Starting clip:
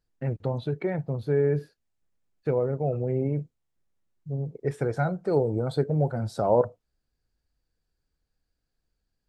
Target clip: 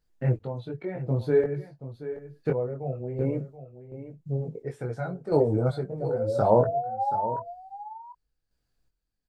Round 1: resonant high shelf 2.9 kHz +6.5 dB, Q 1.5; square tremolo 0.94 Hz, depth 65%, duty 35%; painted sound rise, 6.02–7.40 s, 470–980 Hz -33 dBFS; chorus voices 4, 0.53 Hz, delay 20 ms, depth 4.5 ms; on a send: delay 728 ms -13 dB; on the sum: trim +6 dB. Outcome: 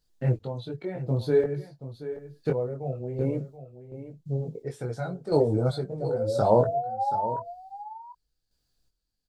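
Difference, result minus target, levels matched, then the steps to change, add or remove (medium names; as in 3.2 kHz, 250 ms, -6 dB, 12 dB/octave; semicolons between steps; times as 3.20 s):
4 kHz band +8.0 dB
remove: resonant high shelf 2.9 kHz +6.5 dB, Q 1.5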